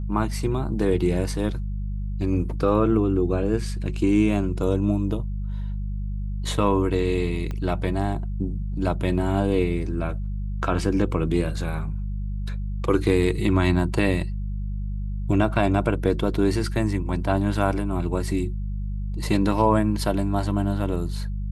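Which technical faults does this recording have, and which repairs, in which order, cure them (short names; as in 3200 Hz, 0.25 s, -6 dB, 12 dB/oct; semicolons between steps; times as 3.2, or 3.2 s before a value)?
hum 50 Hz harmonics 4 -28 dBFS
7.51 pop -19 dBFS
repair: de-click; de-hum 50 Hz, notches 4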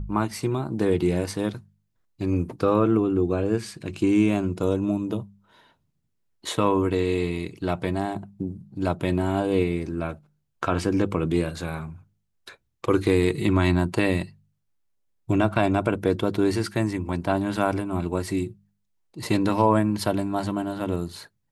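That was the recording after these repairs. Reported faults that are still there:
7.51 pop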